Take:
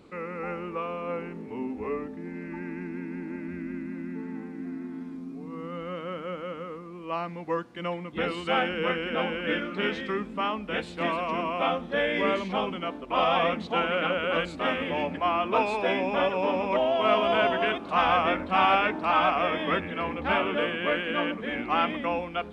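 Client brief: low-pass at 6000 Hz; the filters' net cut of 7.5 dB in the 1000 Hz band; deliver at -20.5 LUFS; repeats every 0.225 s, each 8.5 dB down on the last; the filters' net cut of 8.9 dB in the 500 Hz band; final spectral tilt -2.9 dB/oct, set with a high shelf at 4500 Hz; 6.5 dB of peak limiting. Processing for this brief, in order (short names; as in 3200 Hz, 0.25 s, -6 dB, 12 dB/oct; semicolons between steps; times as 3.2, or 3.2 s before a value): LPF 6000 Hz; bell 500 Hz -9 dB; bell 1000 Hz -7 dB; high shelf 4500 Hz -4.5 dB; limiter -22.5 dBFS; feedback echo 0.225 s, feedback 38%, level -8.5 dB; gain +13.5 dB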